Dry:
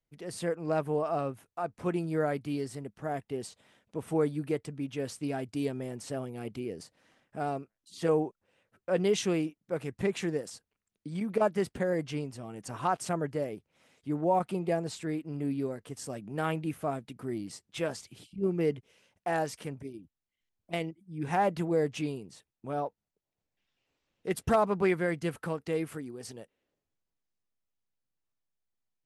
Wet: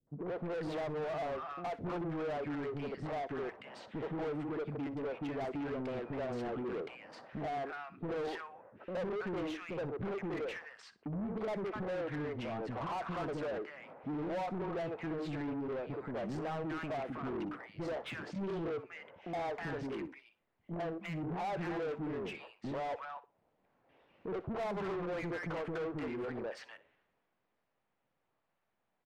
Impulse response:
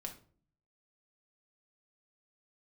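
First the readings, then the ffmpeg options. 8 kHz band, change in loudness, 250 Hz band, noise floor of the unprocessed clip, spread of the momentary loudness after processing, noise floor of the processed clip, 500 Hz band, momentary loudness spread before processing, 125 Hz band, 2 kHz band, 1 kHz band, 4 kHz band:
under -15 dB, -6.5 dB, -5.5 dB, under -85 dBFS, 7 LU, -82 dBFS, -6.5 dB, 14 LU, -6.5 dB, -3.5 dB, -6.0 dB, -7.0 dB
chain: -filter_complex "[0:a]acompressor=threshold=0.00708:ratio=3,acrossover=split=340|1300[s0][s1][s2];[s1]adelay=70[s3];[s2]adelay=320[s4];[s0][s3][s4]amix=inputs=3:normalize=0,adynamicsmooth=sensitivity=2:basefreq=1900,asplit=2[s5][s6];[s6]highpass=f=720:p=1,volume=28.2,asoftclip=type=tanh:threshold=0.0266[s7];[s5][s7]amix=inputs=2:normalize=0,lowpass=f=1800:p=1,volume=0.501,asplit=2[s8][s9];[s9]aecho=0:1:61|122:0.133|0.0333[s10];[s8][s10]amix=inputs=2:normalize=0,volume=1.12"

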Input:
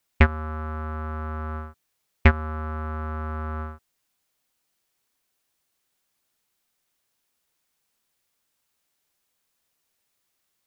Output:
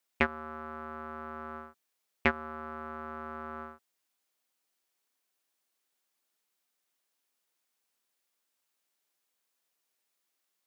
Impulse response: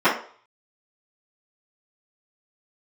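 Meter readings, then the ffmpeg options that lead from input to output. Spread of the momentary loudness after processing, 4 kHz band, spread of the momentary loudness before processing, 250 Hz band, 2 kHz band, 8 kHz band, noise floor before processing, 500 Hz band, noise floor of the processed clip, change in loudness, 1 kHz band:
13 LU, -5.5 dB, 13 LU, -8.5 dB, -5.5 dB, no reading, -76 dBFS, -6.0 dB, -82 dBFS, -9.5 dB, -5.5 dB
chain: -af "highpass=240,volume=0.531"

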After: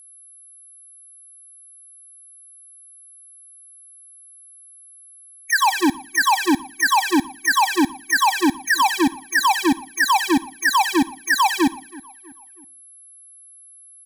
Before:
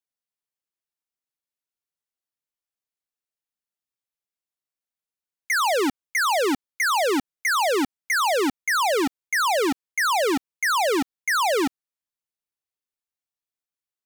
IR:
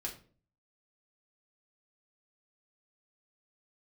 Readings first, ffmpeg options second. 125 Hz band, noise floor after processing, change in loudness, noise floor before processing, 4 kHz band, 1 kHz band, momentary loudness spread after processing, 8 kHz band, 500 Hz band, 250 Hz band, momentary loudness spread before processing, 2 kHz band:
+7.0 dB, -47 dBFS, +3.5 dB, under -85 dBFS, +4.0 dB, +5.0 dB, 5 LU, +4.0 dB, -6.0 dB, +7.0 dB, 4 LU, +4.5 dB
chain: -filter_complex "[0:a]asplit=2[s0][s1];[s1]adelay=323,lowpass=f=2500:p=1,volume=0.0794,asplit=2[s2][s3];[s3]adelay=323,lowpass=f=2500:p=1,volume=0.5,asplit=2[s4][s5];[s5]adelay=323,lowpass=f=2500:p=1,volume=0.5[s6];[s2][s4][s6]amix=inputs=3:normalize=0[s7];[s0][s7]amix=inputs=2:normalize=0,acrusher=bits=11:mix=0:aa=0.000001,asplit=2[s8][s9];[1:a]atrim=start_sample=2205,asetrate=57330,aresample=44100,adelay=49[s10];[s9][s10]afir=irnorm=-1:irlink=0,volume=0.15[s11];[s8][s11]amix=inputs=2:normalize=0,aeval=exprs='val(0)+0.00501*sin(2*PI*11000*n/s)':c=same,afftfilt=real='re*eq(mod(floor(b*sr/1024/380),2),0)':imag='im*eq(mod(floor(b*sr/1024/380),2),0)':win_size=1024:overlap=0.75,volume=2.24"

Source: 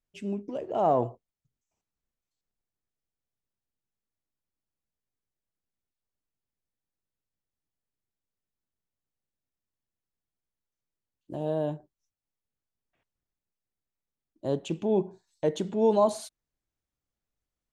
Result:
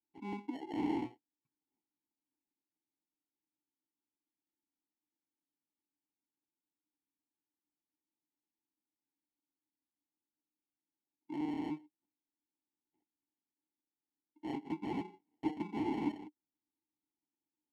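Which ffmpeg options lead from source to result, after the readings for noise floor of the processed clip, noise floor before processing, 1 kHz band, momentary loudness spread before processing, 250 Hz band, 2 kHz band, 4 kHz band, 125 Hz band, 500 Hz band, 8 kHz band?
under -85 dBFS, under -85 dBFS, -12.5 dB, 16 LU, -4.5 dB, 0.0 dB, -10.0 dB, -14.0 dB, -20.0 dB, no reading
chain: -filter_complex "[0:a]acrusher=samples=36:mix=1:aa=0.000001,aeval=exprs='(mod(15*val(0)+1,2)-1)/15':c=same,asplit=3[s0][s1][s2];[s0]bandpass=f=300:t=q:w=8,volume=1[s3];[s1]bandpass=f=870:t=q:w=8,volume=0.501[s4];[s2]bandpass=f=2240:t=q:w=8,volume=0.355[s5];[s3][s4][s5]amix=inputs=3:normalize=0,volume=1.78"

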